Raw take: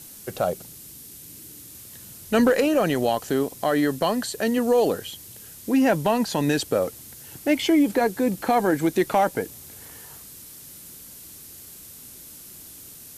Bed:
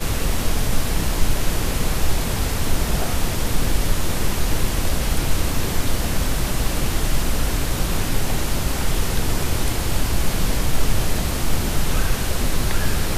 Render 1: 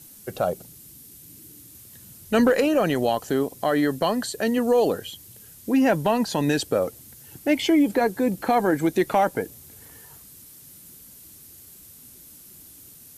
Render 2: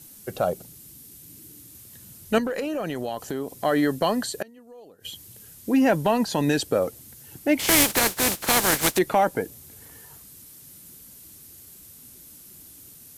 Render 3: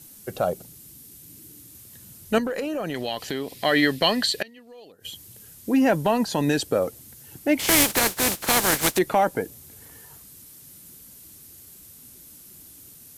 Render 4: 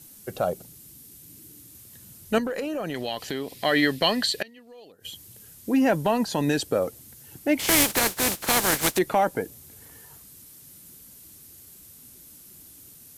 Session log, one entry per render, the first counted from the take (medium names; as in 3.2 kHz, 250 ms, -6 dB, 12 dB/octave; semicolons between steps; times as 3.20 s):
noise reduction 6 dB, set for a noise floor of -44 dBFS
2.38–3.64 s: compression 4:1, threshold -26 dBFS; 4.30–5.05 s: inverted gate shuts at -17 dBFS, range -27 dB; 7.58–8.97 s: spectral contrast reduction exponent 0.31
2.94–4.92 s: high-order bell 3 kHz +12 dB
trim -1.5 dB